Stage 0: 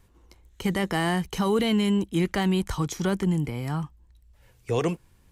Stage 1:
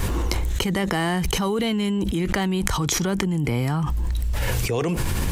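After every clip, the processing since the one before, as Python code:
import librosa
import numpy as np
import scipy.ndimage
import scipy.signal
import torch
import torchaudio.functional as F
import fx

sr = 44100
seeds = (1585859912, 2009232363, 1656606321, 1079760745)

y = fx.env_flatten(x, sr, amount_pct=100)
y = y * librosa.db_to_amplitude(-2.0)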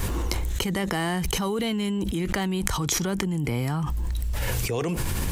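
y = fx.high_shelf(x, sr, hz=7000.0, db=4.5)
y = y * librosa.db_to_amplitude(-3.5)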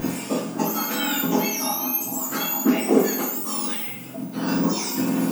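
y = fx.octave_mirror(x, sr, pivot_hz=1600.0)
y = fx.rev_double_slope(y, sr, seeds[0], early_s=0.58, late_s=1.9, knee_db=-18, drr_db=-3.5)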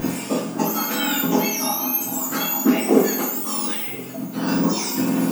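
y = x + 10.0 ** (-20.5 / 20.0) * np.pad(x, (int(1020 * sr / 1000.0), 0))[:len(x)]
y = y * librosa.db_to_amplitude(2.0)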